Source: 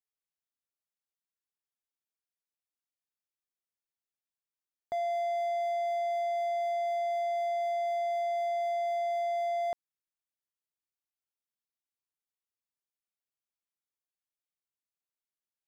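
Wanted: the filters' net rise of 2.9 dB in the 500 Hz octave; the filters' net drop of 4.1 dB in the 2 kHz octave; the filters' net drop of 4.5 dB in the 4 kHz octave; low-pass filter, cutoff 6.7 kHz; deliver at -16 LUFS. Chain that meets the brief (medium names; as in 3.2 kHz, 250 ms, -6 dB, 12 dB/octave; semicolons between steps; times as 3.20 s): low-pass 6.7 kHz; peaking EQ 500 Hz +6 dB; peaking EQ 2 kHz -3.5 dB; peaking EQ 4 kHz -4 dB; trim +13 dB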